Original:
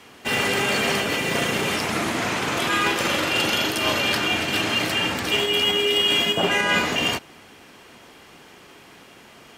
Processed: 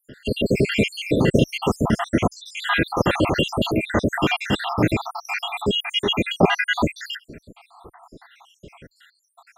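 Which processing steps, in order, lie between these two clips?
time-frequency cells dropped at random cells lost 78%
spectral tilt −3 dB per octave
level +6 dB

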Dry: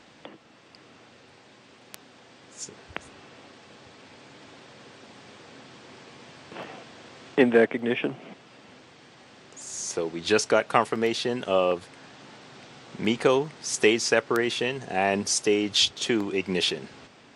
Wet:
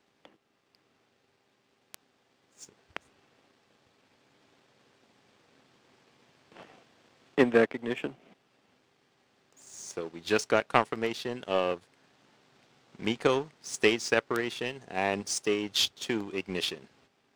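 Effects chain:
hum with harmonics 400 Hz, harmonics 40, −61 dBFS −6 dB per octave
power curve on the samples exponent 1.4

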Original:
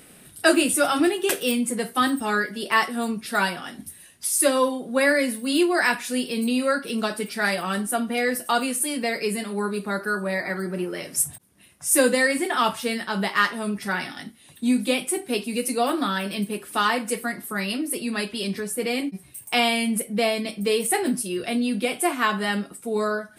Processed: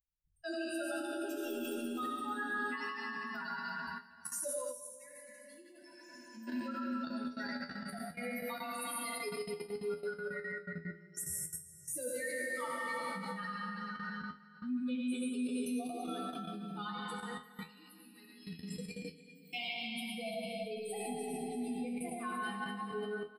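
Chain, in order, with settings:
spectral dynamics exaggerated over time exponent 3
low-shelf EQ 180 Hz +8.5 dB
on a send: repeating echo 338 ms, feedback 42%, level −10 dB
on the sum: comb and all-pass reverb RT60 2.5 s, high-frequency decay 0.9×, pre-delay 45 ms, DRR −3.5 dB
in parallel at −1.5 dB: downward compressor 6 to 1, threshold −33 dBFS, peak gain reduction 19.5 dB
on the sum: flanger 0.68 Hz, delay 6.2 ms, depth 4.9 ms, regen −80%
output level in coarse steps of 17 dB
gain on a spectral selection 0:04.72–0:06.47, 230–5,200 Hz −16 dB
tuned comb filter 83 Hz, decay 0.22 s, harmonics all, mix 90%
level +1.5 dB

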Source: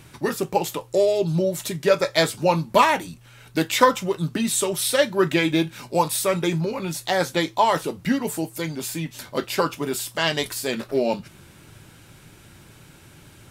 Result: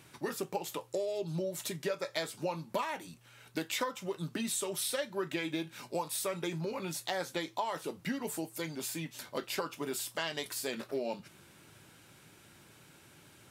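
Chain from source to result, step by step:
high-pass filter 220 Hz 6 dB per octave
downward compressor 6 to 1, threshold −24 dBFS, peak gain reduction 13.5 dB
level −7.5 dB

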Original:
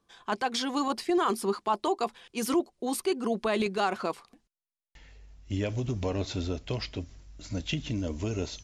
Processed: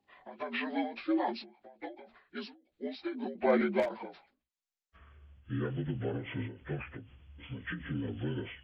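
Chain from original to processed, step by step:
partials spread apart or drawn together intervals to 77%
0:03.35–0:03.89: graphic EQ with 15 bands 250 Hz +9 dB, 630 Hz +11 dB, 2,500 Hz +9 dB
wave folding −13 dBFS
every ending faded ahead of time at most 130 dB per second
level −3 dB

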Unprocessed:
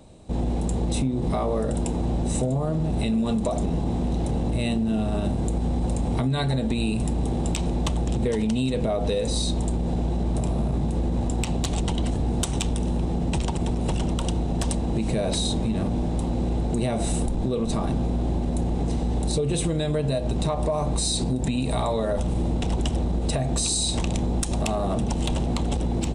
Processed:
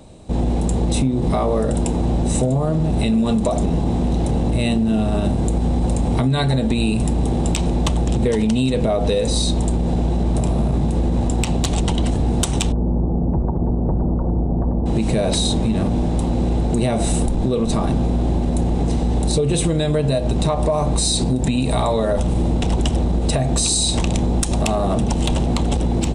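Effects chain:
0:12.72–0:14.86: Bessel low-pass filter 720 Hz, order 6
level +6 dB

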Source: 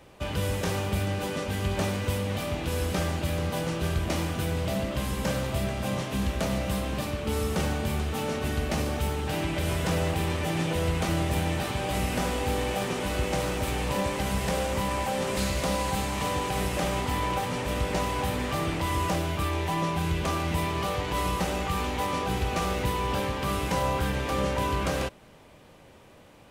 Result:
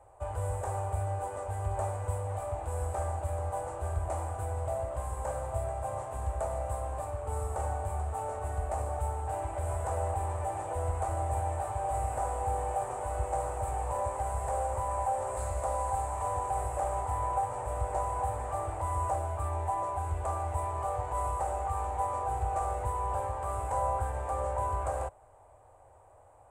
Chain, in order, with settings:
drawn EQ curve 110 Hz 0 dB, 170 Hz −29 dB, 760 Hz +7 dB, 3,200 Hz −24 dB, 5,600 Hz −23 dB, 8,000 Hz +2 dB, 13,000 Hz −16 dB
level −3.5 dB

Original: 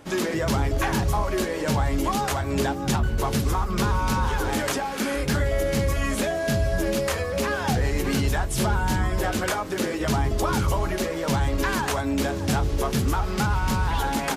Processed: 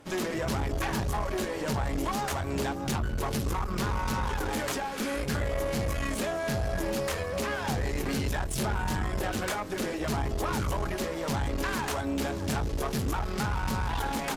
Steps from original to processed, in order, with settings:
tube saturation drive 23 dB, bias 0.65
level −1.5 dB

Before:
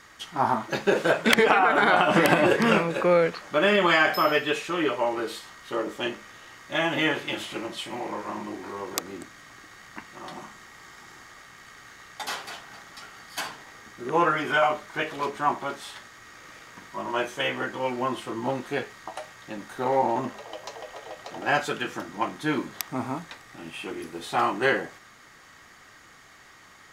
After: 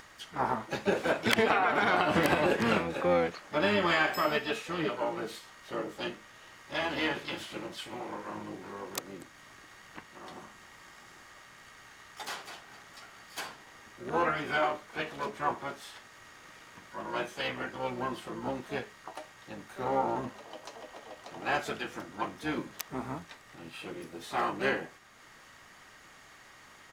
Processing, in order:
upward compression, threshold −41 dBFS
pitch-shifted copies added −12 semitones −10 dB, +7 semitones −10 dB
level −7.5 dB

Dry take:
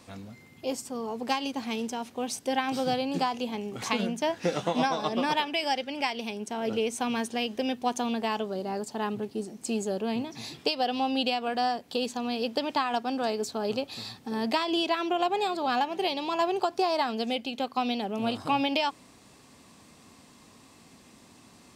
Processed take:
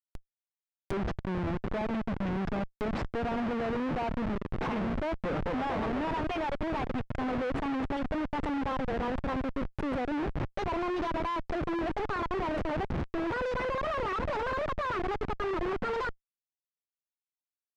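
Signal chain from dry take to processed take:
gliding playback speed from 69% → 176%
comparator with hysteresis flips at −32.5 dBFS
treble cut that deepens with the level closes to 2,100 Hz, closed at −32.5 dBFS

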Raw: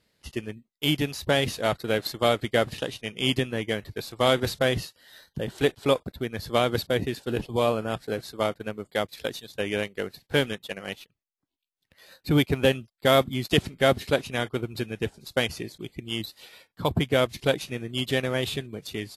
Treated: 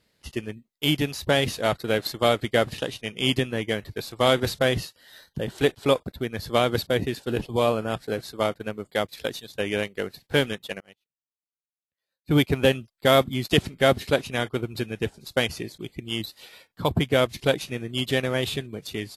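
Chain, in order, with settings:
0:10.80–0:12.36: expander for the loud parts 2.5 to 1, over −43 dBFS
level +1.5 dB

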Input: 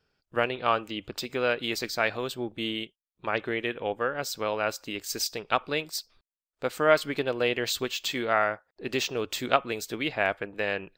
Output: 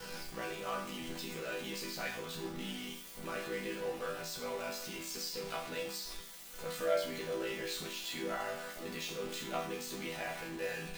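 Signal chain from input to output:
converter with a step at zero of −22.5 dBFS
ring modulation 30 Hz
resonators tuned to a chord E3 minor, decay 0.51 s
level +5 dB

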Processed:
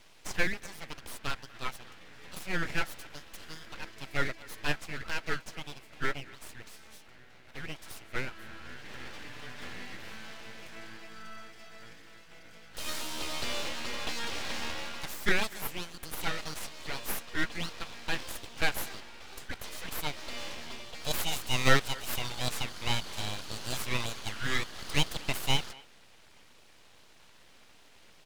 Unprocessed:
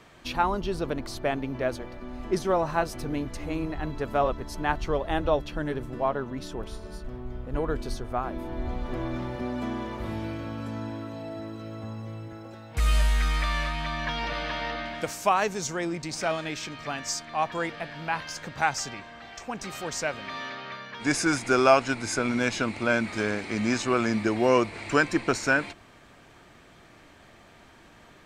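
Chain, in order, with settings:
Butterworth high-pass 650 Hz 96 dB per octave
full-wave rectification
far-end echo of a speakerphone 240 ms, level −21 dB

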